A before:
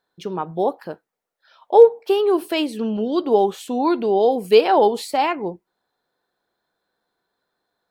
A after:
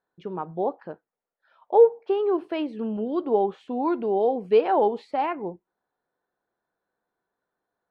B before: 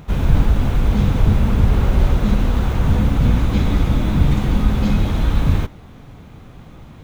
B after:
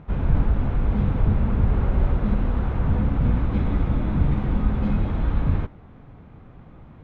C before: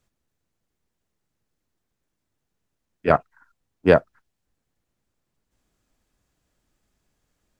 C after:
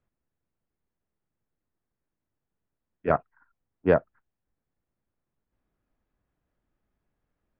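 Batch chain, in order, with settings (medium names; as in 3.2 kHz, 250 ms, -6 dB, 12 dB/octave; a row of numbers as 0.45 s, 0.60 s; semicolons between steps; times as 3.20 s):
low-pass 1.9 kHz 12 dB/octave; trim -5.5 dB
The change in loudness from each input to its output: -5.5 LU, -5.5 LU, -5.5 LU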